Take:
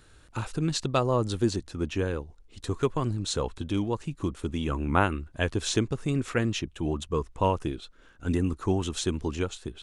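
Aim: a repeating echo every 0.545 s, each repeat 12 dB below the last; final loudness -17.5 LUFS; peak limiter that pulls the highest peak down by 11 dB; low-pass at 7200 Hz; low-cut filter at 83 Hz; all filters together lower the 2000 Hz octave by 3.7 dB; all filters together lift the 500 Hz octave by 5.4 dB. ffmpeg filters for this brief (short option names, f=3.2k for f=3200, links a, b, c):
-af "highpass=83,lowpass=7.2k,equalizer=f=500:t=o:g=7,equalizer=f=2k:t=o:g=-6,alimiter=limit=-15.5dB:level=0:latency=1,aecho=1:1:545|1090|1635:0.251|0.0628|0.0157,volume=11.5dB"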